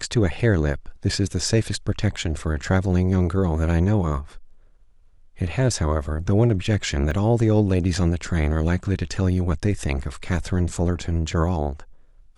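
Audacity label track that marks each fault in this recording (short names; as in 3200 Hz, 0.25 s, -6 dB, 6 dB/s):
7.110000	7.110000	gap 2.8 ms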